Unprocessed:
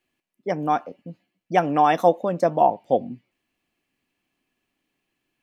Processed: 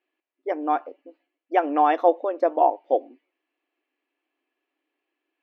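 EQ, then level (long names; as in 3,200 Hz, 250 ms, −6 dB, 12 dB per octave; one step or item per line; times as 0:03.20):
linear-phase brick-wall high-pass 270 Hz
high-frequency loss of the air 320 metres
0.0 dB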